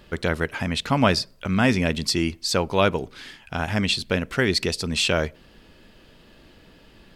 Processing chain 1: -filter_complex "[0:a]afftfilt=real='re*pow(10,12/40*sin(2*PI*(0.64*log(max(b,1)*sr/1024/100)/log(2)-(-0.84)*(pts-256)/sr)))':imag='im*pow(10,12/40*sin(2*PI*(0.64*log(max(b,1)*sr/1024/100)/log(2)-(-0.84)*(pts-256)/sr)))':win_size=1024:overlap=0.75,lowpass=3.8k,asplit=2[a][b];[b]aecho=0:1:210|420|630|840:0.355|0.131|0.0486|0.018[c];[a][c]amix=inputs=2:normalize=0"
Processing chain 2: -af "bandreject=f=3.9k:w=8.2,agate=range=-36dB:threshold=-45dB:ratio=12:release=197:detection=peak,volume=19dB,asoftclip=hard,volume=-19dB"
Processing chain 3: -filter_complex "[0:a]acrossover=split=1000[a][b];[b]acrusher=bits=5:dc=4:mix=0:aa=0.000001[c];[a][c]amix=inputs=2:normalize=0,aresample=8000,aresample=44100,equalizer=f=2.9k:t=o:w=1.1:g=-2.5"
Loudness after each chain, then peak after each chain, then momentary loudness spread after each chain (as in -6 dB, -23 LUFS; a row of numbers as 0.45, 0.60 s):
-22.0, -25.5, -24.5 LUFS; -3.5, -19.0, -4.0 dBFS; 11, 7, 8 LU